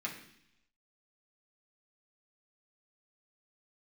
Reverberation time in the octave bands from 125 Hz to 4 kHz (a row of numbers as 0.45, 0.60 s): 0.90, 0.90, 0.70, 0.70, 0.90, 0.95 s